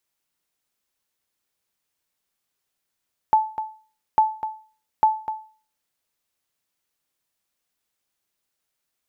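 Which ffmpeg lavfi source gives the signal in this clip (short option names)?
-f lavfi -i "aevalsrc='0.355*(sin(2*PI*871*mod(t,0.85))*exp(-6.91*mod(t,0.85)/0.4)+0.266*sin(2*PI*871*max(mod(t,0.85)-0.25,0))*exp(-6.91*max(mod(t,0.85)-0.25,0)/0.4))':d=2.55:s=44100"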